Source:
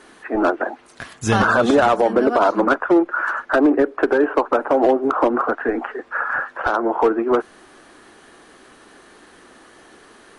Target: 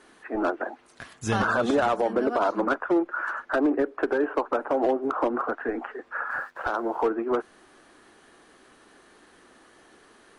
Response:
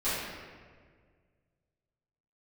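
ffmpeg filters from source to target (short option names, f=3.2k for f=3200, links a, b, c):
-filter_complex "[0:a]asplit=3[a][b][c];[a]afade=t=out:st=6.29:d=0.02[d];[b]aeval=exprs='sgn(val(0))*max(abs(val(0))-0.00266,0)':c=same,afade=t=in:st=6.29:d=0.02,afade=t=out:st=7.02:d=0.02[e];[c]afade=t=in:st=7.02:d=0.02[f];[d][e][f]amix=inputs=3:normalize=0,volume=-8dB"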